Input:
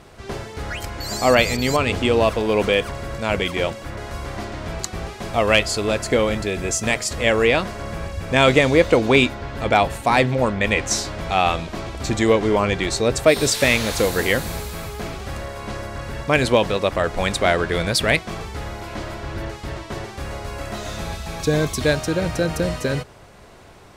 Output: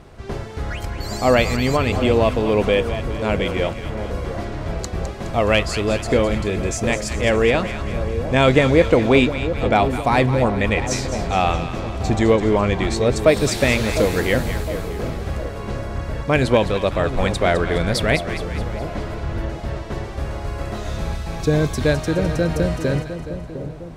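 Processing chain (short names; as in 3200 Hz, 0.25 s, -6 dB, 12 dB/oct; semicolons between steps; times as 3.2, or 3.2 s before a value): tilt -1.5 dB/oct; on a send: split-band echo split 870 Hz, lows 0.707 s, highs 0.209 s, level -10 dB; on the sum: gain -1 dB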